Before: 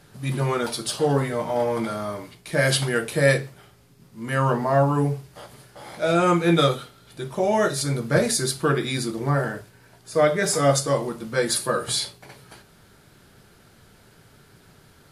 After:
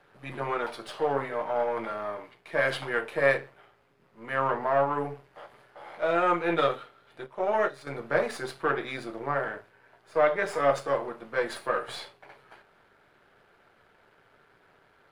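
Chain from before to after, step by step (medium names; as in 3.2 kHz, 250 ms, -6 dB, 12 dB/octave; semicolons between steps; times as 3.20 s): partial rectifier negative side -7 dB; three-band isolator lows -16 dB, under 390 Hz, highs -21 dB, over 2.8 kHz; 7.26–7.87 s: upward expansion 1.5:1, over -38 dBFS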